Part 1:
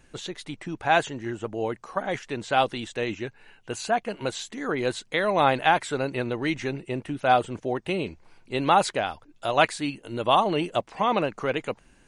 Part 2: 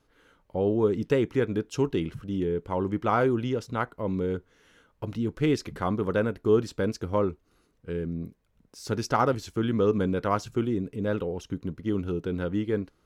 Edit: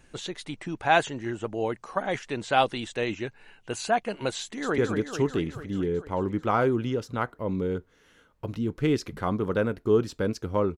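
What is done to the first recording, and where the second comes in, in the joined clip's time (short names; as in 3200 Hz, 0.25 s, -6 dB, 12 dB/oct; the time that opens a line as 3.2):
part 1
4.4–4.78 echo throw 0.22 s, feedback 70%, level -5.5 dB
4.78 switch to part 2 from 1.37 s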